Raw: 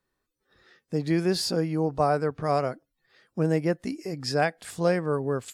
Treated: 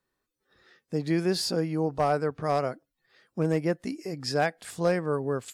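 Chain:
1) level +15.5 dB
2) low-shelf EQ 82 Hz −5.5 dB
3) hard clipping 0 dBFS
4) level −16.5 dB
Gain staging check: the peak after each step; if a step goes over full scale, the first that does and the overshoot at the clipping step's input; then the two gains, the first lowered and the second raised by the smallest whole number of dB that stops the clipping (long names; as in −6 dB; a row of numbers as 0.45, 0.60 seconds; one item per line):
+4.5, +4.5, 0.0, −16.5 dBFS
step 1, 4.5 dB
step 1 +10.5 dB, step 4 −11.5 dB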